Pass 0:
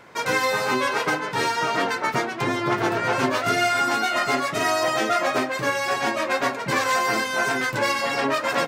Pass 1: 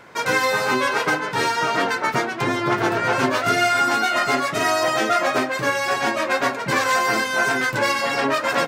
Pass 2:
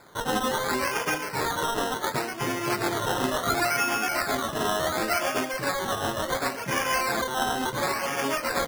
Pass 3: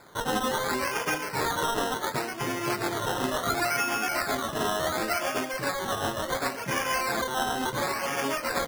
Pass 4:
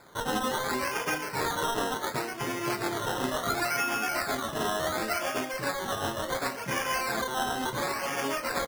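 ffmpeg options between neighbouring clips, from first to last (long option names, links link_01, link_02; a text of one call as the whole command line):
ffmpeg -i in.wav -af "equalizer=frequency=1500:width=6.5:gain=2.5,volume=2dB" out.wav
ffmpeg -i in.wav -af "acrusher=samples=15:mix=1:aa=0.000001:lfo=1:lforange=9:lforate=0.7,volume=-6.5dB" out.wav
ffmpeg -i in.wav -af "alimiter=limit=-18.5dB:level=0:latency=1:release=402" out.wav
ffmpeg -i in.wav -filter_complex "[0:a]asplit=2[link_01][link_02];[link_02]adelay=32,volume=-13dB[link_03];[link_01][link_03]amix=inputs=2:normalize=0,volume=-2dB" out.wav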